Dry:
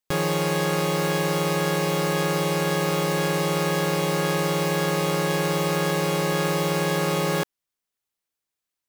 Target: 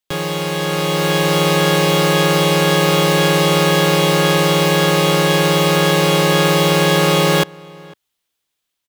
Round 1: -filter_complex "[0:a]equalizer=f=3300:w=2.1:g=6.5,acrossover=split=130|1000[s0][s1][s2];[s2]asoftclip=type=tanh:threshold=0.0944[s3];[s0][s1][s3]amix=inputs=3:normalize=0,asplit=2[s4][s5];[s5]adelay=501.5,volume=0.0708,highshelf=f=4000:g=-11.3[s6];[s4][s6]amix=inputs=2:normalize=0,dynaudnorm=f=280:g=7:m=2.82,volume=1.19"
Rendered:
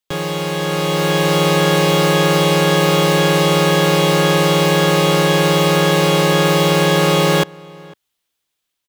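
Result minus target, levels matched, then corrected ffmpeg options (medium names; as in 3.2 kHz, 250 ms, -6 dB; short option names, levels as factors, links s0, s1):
saturation: distortion +14 dB
-filter_complex "[0:a]equalizer=f=3300:w=2.1:g=6.5,acrossover=split=130|1000[s0][s1][s2];[s2]asoftclip=type=tanh:threshold=0.266[s3];[s0][s1][s3]amix=inputs=3:normalize=0,asplit=2[s4][s5];[s5]adelay=501.5,volume=0.0708,highshelf=f=4000:g=-11.3[s6];[s4][s6]amix=inputs=2:normalize=0,dynaudnorm=f=280:g=7:m=2.82,volume=1.19"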